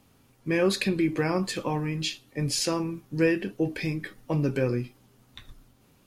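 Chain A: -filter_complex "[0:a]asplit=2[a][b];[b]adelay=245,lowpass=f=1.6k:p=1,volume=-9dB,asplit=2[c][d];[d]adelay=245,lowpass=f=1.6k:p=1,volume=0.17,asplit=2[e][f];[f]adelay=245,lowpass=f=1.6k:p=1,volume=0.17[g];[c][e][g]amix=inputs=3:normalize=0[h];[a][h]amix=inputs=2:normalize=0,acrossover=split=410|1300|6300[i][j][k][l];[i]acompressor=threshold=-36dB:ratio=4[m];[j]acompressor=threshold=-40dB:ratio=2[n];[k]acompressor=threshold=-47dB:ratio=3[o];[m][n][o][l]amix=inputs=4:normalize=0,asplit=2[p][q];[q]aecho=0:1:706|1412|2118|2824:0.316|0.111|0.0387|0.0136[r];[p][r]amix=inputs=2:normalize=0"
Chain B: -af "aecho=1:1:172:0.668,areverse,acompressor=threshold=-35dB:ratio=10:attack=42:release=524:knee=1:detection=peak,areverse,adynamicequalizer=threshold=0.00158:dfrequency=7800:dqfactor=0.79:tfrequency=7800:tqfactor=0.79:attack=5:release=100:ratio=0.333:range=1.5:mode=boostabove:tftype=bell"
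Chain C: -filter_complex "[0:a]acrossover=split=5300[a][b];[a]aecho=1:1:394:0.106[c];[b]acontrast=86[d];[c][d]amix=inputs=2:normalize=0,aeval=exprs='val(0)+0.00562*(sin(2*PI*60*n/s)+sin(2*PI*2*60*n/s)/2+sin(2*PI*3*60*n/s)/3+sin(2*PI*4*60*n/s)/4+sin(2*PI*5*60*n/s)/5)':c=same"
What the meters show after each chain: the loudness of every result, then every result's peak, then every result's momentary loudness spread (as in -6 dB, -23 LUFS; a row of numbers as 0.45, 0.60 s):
-34.5, -37.5, -27.0 LUFS; -19.0, -23.5, -11.5 dBFS; 12, 12, 17 LU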